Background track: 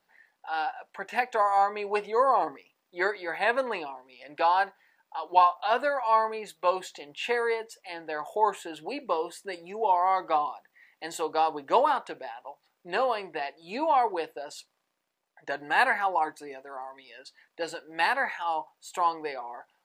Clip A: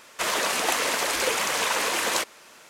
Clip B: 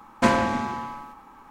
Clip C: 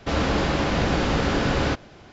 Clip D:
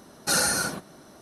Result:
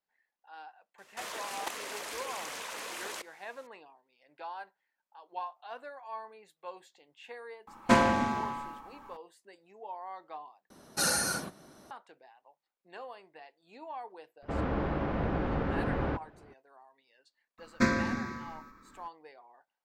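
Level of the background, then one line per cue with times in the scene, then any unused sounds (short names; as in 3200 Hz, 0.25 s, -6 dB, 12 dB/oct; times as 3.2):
background track -18.5 dB
0.98 add A -8 dB + level quantiser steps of 11 dB
7.67 add B -3 dB
10.7 replace with D -5.5 dB
14.42 add C -8.5 dB + LPF 1500 Hz
17.58 add B -3.5 dB + fixed phaser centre 3000 Hz, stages 6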